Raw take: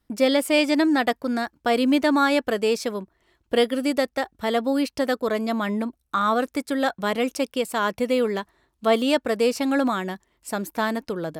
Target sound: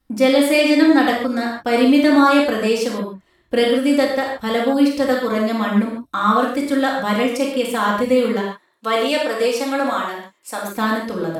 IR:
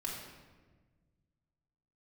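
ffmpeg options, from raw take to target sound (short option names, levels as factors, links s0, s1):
-filter_complex "[0:a]asplit=3[s0][s1][s2];[s0]afade=t=out:st=8.39:d=0.02[s3];[s1]highpass=400,afade=t=in:st=8.39:d=0.02,afade=t=out:st=10.69:d=0.02[s4];[s2]afade=t=in:st=10.69:d=0.02[s5];[s3][s4][s5]amix=inputs=3:normalize=0[s6];[1:a]atrim=start_sample=2205,afade=t=out:st=0.18:d=0.01,atrim=end_sample=8379,asetrate=37485,aresample=44100[s7];[s6][s7]afir=irnorm=-1:irlink=0,volume=1.5"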